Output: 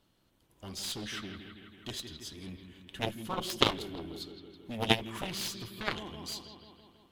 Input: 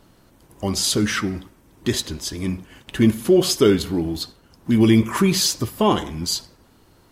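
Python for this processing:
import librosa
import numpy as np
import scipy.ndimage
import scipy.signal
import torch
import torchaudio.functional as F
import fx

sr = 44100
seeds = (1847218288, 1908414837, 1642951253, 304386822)

y = fx.high_shelf(x, sr, hz=9500.0, db=3.5)
y = fx.echo_bbd(y, sr, ms=163, stages=4096, feedback_pct=67, wet_db=-9.5)
y = fx.cheby_harmonics(y, sr, harmonics=(3, 6), levels_db=(-7, -32), full_scale_db=-2.5)
y = fx.peak_eq(y, sr, hz=3300.0, db=8.5, octaves=0.85)
y = fx.upward_expand(y, sr, threshold_db=-30.0, expansion=1.5)
y = y * librosa.db_to_amplitude(-3.0)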